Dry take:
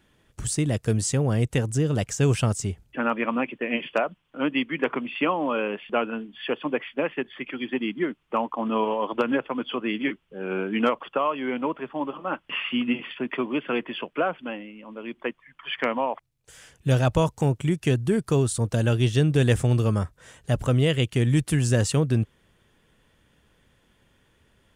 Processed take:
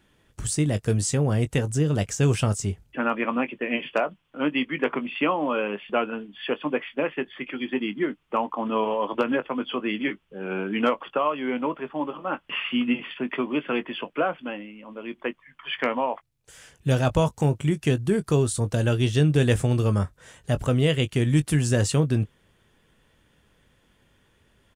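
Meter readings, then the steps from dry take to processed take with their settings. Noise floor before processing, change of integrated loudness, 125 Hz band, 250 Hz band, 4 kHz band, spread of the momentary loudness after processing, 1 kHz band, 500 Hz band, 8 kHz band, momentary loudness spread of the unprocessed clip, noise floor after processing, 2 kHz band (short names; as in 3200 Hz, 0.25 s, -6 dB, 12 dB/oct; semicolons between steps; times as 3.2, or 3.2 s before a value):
-65 dBFS, 0.0 dB, 0.0 dB, +0.5 dB, 0.0 dB, 10 LU, +0.5 dB, +0.5 dB, +0.5 dB, 11 LU, -64 dBFS, +0.5 dB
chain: doubler 20 ms -12 dB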